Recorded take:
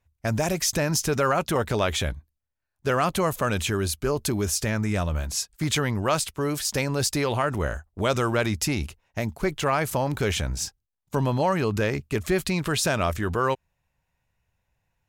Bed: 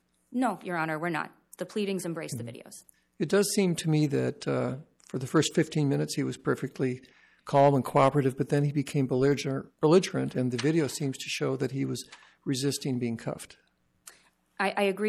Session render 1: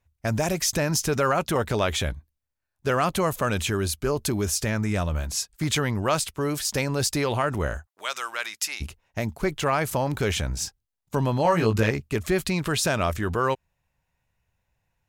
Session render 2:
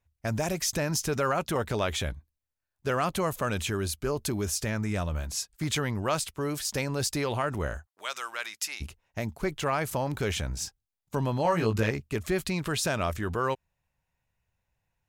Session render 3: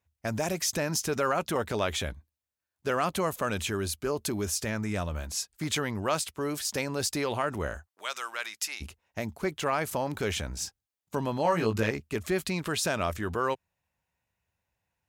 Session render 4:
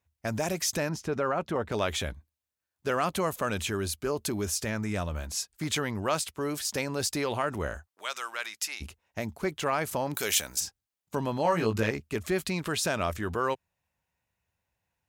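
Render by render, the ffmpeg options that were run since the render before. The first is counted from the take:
-filter_complex "[0:a]asplit=3[a][b][c];[a]afade=t=out:st=7.85:d=0.02[d];[b]highpass=1.3k,afade=t=in:st=7.85:d=0.02,afade=t=out:st=8.8:d=0.02[e];[c]afade=t=in:st=8.8:d=0.02[f];[d][e][f]amix=inputs=3:normalize=0,asettb=1/sr,asplit=3[g][h][i];[g]atrim=end=11.434[j];[h]atrim=start=11.43:end=11.91,asetpts=PTS-STARTPTS,afade=t=in:d=0.004:c=qsin,afade=t=out:st=0.476:d=0.004:c=qsin,asplit=2[k][l];[l]adelay=18,volume=-2dB[m];[k][m]amix=inputs=2:normalize=0,atrim=end_sample=21168[n];[i]atrim=start=11.906[o];[j][n]acrossfade=d=0.004:c1=hsin:c2=qsin[p];[p][o]acrossfade=d=0.004:c1=qsin:c2=hsin"
-af "volume=-4.5dB"
-af "highpass=73,equalizer=f=130:w=2.9:g=-6.5"
-filter_complex "[0:a]asettb=1/sr,asplit=3[a][b][c];[a]atrim=end=0.894[d];[b]atrim=start=0.89:end=1.72,asetpts=PTS-STARTPTS,afade=t=in:d=0.004:c=qsin,afade=t=out:st=0.826:d=0.004:c=qsin,lowpass=f=1.4k:p=1[e];[c]atrim=start=1.716[f];[d][e]acrossfade=d=0.004:c1=hsin:c2=qsin[g];[g][f]acrossfade=d=0.004:c1=qsin:c2=hsin,asplit=3[h][i][j];[h]afade=t=out:st=10.14:d=0.02[k];[i]aemphasis=mode=production:type=riaa,afade=t=in:st=10.14:d=0.02,afade=t=out:st=10.59:d=0.02[l];[j]afade=t=in:st=10.59:d=0.02[m];[k][l][m]amix=inputs=3:normalize=0"

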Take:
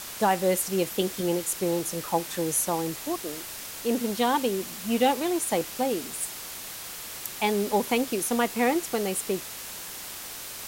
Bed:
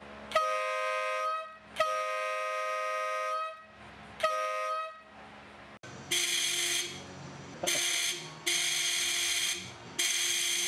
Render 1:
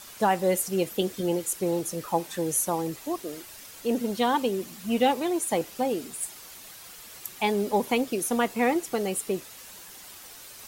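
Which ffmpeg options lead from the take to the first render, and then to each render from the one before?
-af "afftdn=nr=9:nf=-39"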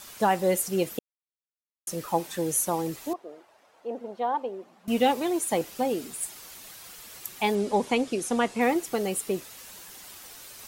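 -filter_complex "[0:a]asettb=1/sr,asplit=3[a][b][c];[a]atrim=end=3.134[d];[b]atrim=start=3.13:end=4.88,asetpts=PTS-STARTPTS,afade=t=in:d=0.004:c=qsin,afade=t=out:st=1.746:d=0.004:c=qsin,bandpass=f=720:t=q:w=1.8[e];[c]atrim=start=4.876[f];[d][e]acrossfade=d=0.004:c1=hsin:c2=qsin[g];[g][f]acrossfade=d=0.004:c1=qsin:c2=hsin,asettb=1/sr,asplit=3[h][i][j];[h]atrim=end=7.554[k];[i]atrim=start=7.55:end=8.61,asetpts=PTS-STARTPTS,afade=t=in:d=0.004:c=qsin,afade=t=out:st=1.056:d=0.004:c=qsin,lowpass=f=9.5k:w=0.5412,lowpass=f=9.5k:w=1.3066[l];[j]atrim=start=8.606[m];[k][l]acrossfade=d=0.004:c1=hsin:c2=qsin[n];[n][m]acrossfade=d=0.004:c1=qsin:c2=hsin,asplit=3[o][p][q];[o]atrim=end=0.99,asetpts=PTS-STARTPTS,afade=t=out:st=0.986:d=0.004:c=hsin[r];[p]atrim=start=0.99:end=1.87,asetpts=PTS-STARTPTS,volume=0[s];[q]atrim=start=1.87,asetpts=PTS-STARTPTS,afade=t=in:d=0.004:c=hsin[t];[r][s][t]concat=n=3:v=0:a=1"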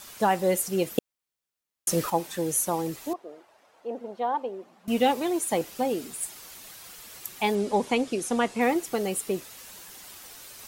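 -filter_complex "[0:a]asplit=3[a][b][c];[a]atrim=end=0.982[d];[b]atrim=start=0.978:end=2.102,asetpts=PTS-STARTPTS,volume=8dB[e];[c]atrim=start=2.098[f];[d][e]acrossfade=d=0.004:c1=hsin:c2=hsin[g];[g][f]acrossfade=d=0.004:c1=hsin:c2=hsin"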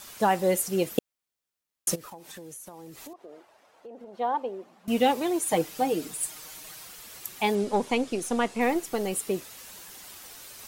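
-filter_complex "[0:a]asplit=3[a][b][c];[a]afade=t=out:st=1.94:d=0.02[d];[b]acompressor=threshold=-40dB:ratio=10:attack=3.2:release=140:knee=1:detection=peak,afade=t=in:st=1.94:d=0.02,afade=t=out:st=4.13:d=0.02[e];[c]afade=t=in:st=4.13:d=0.02[f];[d][e][f]amix=inputs=3:normalize=0,asettb=1/sr,asplit=3[g][h][i];[g]atrim=end=5.454[j];[h]atrim=start=5.45:end=6.85,asetpts=PTS-STARTPTS,afade=t=in:d=0.004:c=qsin,afade=t=out:st=1.396:d=0.004:c=qsin,aecho=1:1:6.5:0.65,atrim=end_sample=61740[k];[i]atrim=start=6.846[l];[j][k]acrossfade=d=0.004:c1=hsin:c2=qsin[m];[m][l]acrossfade=d=0.004:c1=qsin:c2=hsin,asettb=1/sr,asplit=3[n][o][p];[n]atrim=end=7.644[q];[o]atrim=start=7.64:end=9.13,asetpts=PTS-STARTPTS,afade=t=in:d=0.004:c=qsin,afade=t=out:st=1.486:d=0.004:c=qsin,aeval=exprs='if(lt(val(0),0),0.708*val(0),val(0))':c=same[r];[p]atrim=start=9.126[s];[q][r]acrossfade=d=0.004:c1=hsin:c2=qsin[t];[t][s]acrossfade=d=0.004:c1=qsin:c2=hsin"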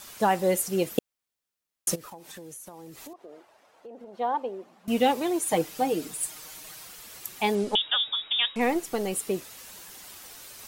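-filter_complex "[0:a]asettb=1/sr,asplit=3[a][b][c];[a]atrim=end=7.754[d];[b]atrim=start=7.75:end=8.56,asetpts=PTS-STARTPTS,afade=t=in:d=0.004:c=qsin,afade=t=out:st=0.806:d=0.004:c=qsin,lowpass=f=3.2k:t=q:w=0.5098,lowpass=f=3.2k:t=q:w=0.6013,lowpass=f=3.2k:t=q:w=0.9,lowpass=f=3.2k:t=q:w=2.563,afreqshift=-3800[e];[c]atrim=start=8.556[f];[d][e]acrossfade=d=0.004:c1=hsin:c2=qsin[g];[g][f]acrossfade=d=0.004:c1=qsin:c2=hsin"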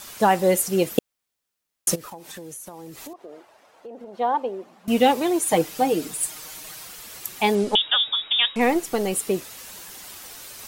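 -af "volume=5dB"

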